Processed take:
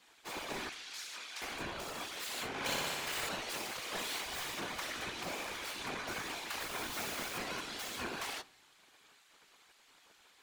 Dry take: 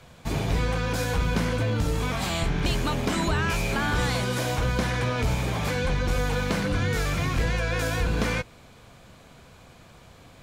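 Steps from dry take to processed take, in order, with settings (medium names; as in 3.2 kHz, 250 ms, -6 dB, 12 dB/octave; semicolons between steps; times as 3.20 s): tracing distortion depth 0.14 ms; spectral gate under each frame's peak -15 dB weak; whisper effect; 0.69–1.42 s: band-pass filter 4.8 kHz, Q 0.69; 2.48–3.29 s: flutter echo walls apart 10.4 m, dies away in 1.4 s; 6.60–7.38 s: word length cut 6-bit, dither none; on a send at -20.5 dB: reverberation RT60 1.0 s, pre-delay 3 ms; on the sum: trim -6.5 dB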